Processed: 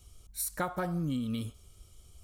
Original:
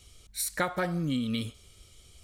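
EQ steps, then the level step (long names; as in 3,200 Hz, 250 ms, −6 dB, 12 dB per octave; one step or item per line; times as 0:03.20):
octave-band graphic EQ 125/250/500/2,000/4,000/8,000 Hz −3/−4/−6/−12/−9/−5 dB
+2.5 dB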